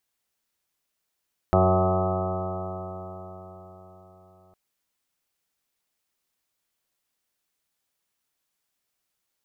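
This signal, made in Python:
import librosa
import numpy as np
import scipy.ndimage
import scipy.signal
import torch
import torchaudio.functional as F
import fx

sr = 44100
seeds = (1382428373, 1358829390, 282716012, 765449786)

y = fx.additive_stiff(sr, length_s=3.01, hz=91.7, level_db=-21.0, upper_db=(-2.5, -17.5, -2.5, -11, -6, 0, -3.5, -9, -19.5, -14.0, -11.0, -7), decay_s=4.54, stiffness=0.0009)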